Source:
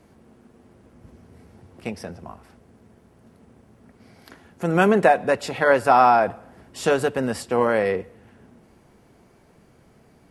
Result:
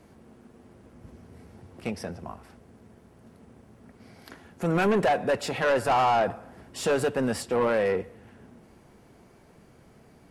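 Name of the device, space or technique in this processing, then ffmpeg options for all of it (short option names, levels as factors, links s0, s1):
saturation between pre-emphasis and de-emphasis: -af "highshelf=f=2600:g=8.5,asoftclip=type=tanh:threshold=0.126,highshelf=f=2600:g=-8.5"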